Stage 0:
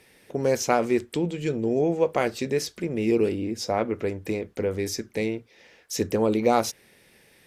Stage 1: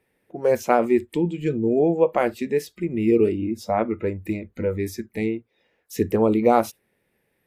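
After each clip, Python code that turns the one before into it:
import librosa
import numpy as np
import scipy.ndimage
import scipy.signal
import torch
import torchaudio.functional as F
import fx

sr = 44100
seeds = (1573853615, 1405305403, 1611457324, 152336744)

y = fx.noise_reduce_blind(x, sr, reduce_db=15)
y = fx.peak_eq(y, sr, hz=5500.0, db=-14.5, octaves=1.8)
y = F.gain(torch.from_numpy(y), 4.5).numpy()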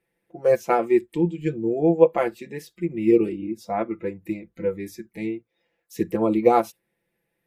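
y = x + 0.73 * np.pad(x, (int(5.9 * sr / 1000.0), 0))[:len(x)]
y = fx.upward_expand(y, sr, threshold_db=-25.0, expansion=1.5)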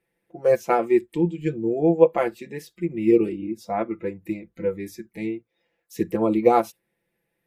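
y = x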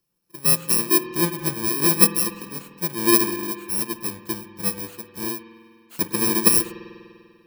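y = fx.bit_reversed(x, sr, seeds[0], block=64)
y = fx.rev_spring(y, sr, rt60_s=2.2, pass_ms=(49,), chirp_ms=75, drr_db=9.5)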